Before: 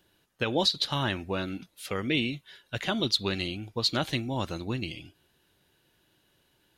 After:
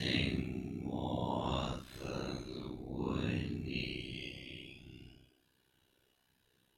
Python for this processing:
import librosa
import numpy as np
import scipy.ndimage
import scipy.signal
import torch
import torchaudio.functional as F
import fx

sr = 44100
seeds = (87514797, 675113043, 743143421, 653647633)

y = fx.paulstretch(x, sr, seeds[0], factor=5.3, window_s=0.05, from_s=4.12)
y = y * np.sin(2.0 * np.pi * 32.0 * np.arange(len(y)) / sr)
y = y * librosa.db_to_amplitude(-3.5)